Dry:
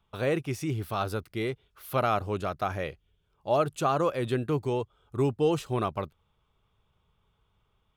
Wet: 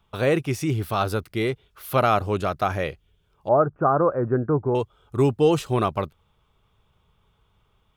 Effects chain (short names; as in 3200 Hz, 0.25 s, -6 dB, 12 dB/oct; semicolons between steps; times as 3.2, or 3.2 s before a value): 3.48–4.75 elliptic low-pass 1500 Hz, stop band 60 dB; gain +6.5 dB